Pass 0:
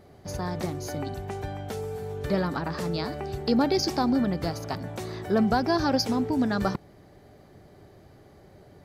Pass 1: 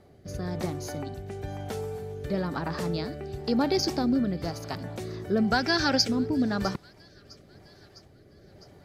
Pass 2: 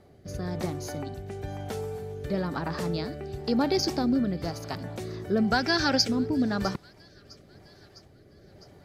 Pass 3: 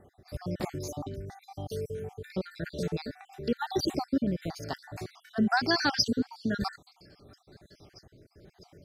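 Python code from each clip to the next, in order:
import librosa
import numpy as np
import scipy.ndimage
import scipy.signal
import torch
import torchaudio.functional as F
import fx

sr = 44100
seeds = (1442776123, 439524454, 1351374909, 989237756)

y1 = fx.spec_box(x, sr, start_s=5.52, length_s=0.56, low_hz=1300.0, high_hz=8900.0, gain_db=8)
y1 = fx.echo_wet_highpass(y1, sr, ms=656, feedback_pct=54, hz=1900.0, wet_db=-19.0)
y1 = fx.rotary(y1, sr, hz=1.0)
y2 = y1
y3 = fx.spec_dropout(y2, sr, seeds[0], share_pct=54)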